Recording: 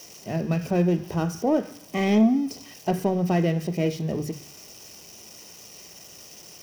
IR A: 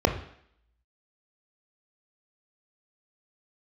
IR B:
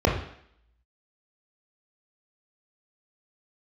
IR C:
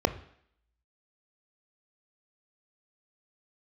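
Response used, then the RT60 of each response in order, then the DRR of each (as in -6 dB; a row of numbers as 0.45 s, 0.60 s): C; 0.65 s, 0.65 s, 0.65 s; 6.0 dB, 0.0 dB, 12.0 dB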